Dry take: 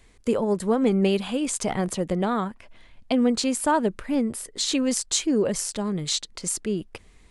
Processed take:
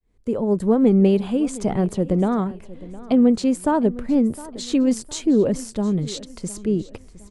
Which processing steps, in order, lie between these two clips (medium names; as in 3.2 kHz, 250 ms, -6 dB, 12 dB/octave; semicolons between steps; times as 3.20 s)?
fade-in on the opening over 0.59 s; tilt shelf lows +7.5 dB, about 820 Hz; on a send: feedback delay 711 ms, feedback 39%, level -18.5 dB